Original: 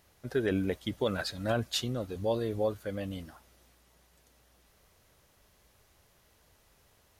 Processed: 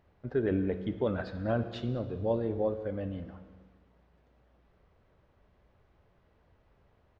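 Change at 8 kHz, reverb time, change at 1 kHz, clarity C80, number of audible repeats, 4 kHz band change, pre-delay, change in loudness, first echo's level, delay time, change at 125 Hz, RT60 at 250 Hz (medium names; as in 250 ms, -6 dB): under -25 dB, 1.5 s, -1.5 dB, 11.5 dB, 1, -13.5 dB, 11 ms, 0.0 dB, -21.0 dB, 202 ms, +1.5 dB, 1.4 s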